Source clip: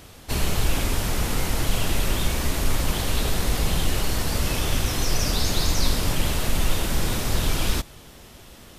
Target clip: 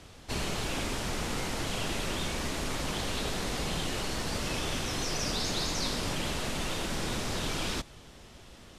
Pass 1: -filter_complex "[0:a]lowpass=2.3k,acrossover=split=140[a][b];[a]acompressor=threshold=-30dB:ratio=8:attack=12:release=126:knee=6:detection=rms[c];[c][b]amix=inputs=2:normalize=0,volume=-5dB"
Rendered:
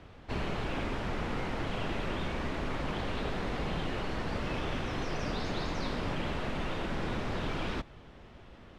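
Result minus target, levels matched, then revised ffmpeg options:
8000 Hz band -15.5 dB
-filter_complex "[0:a]lowpass=8.1k,acrossover=split=140[a][b];[a]acompressor=threshold=-30dB:ratio=8:attack=12:release=126:knee=6:detection=rms[c];[c][b]amix=inputs=2:normalize=0,volume=-5dB"

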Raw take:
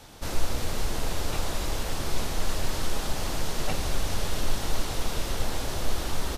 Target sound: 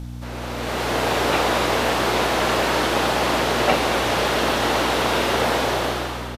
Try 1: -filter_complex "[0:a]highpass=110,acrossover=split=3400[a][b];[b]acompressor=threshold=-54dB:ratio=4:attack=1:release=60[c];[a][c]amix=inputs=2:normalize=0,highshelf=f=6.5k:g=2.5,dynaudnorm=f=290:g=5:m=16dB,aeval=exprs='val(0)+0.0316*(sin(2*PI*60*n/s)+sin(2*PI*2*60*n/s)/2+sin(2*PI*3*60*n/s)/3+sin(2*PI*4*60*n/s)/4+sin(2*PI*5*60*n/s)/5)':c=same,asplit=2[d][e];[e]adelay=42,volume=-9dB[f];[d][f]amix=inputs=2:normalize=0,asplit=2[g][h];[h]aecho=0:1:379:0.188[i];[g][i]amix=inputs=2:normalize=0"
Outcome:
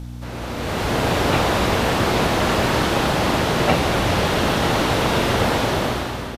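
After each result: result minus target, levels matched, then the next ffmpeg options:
echo 0.166 s late; 125 Hz band +6.5 dB
-filter_complex "[0:a]highpass=110,acrossover=split=3400[a][b];[b]acompressor=threshold=-54dB:ratio=4:attack=1:release=60[c];[a][c]amix=inputs=2:normalize=0,highshelf=f=6.5k:g=2.5,dynaudnorm=f=290:g=5:m=16dB,aeval=exprs='val(0)+0.0316*(sin(2*PI*60*n/s)+sin(2*PI*2*60*n/s)/2+sin(2*PI*3*60*n/s)/3+sin(2*PI*4*60*n/s)/4+sin(2*PI*5*60*n/s)/5)':c=same,asplit=2[d][e];[e]adelay=42,volume=-9dB[f];[d][f]amix=inputs=2:normalize=0,asplit=2[g][h];[h]aecho=0:1:213:0.188[i];[g][i]amix=inputs=2:normalize=0"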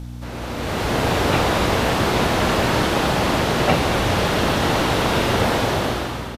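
125 Hz band +6.5 dB
-filter_complex "[0:a]highpass=310,acrossover=split=3400[a][b];[b]acompressor=threshold=-54dB:ratio=4:attack=1:release=60[c];[a][c]amix=inputs=2:normalize=0,highshelf=f=6.5k:g=2.5,dynaudnorm=f=290:g=5:m=16dB,aeval=exprs='val(0)+0.0316*(sin(2*PI*60*n/s)+sin(2*PI*2*60*n/s)/2+sin(2*PI*3*60*n/s)/3+sin(2*PI*4*60*n/s)/4+sin(2*PI*5*60*n/s)/5)':c=same,asplit=2[d][e];[e]adelay=42,volume=-9dB[f];[d][f]amix=inputs=2:normalize=0,asplit=2[g][h];[h]aecho=0:1:213:0.188[i];[g][i]amix=inputs=2:normalize=0"

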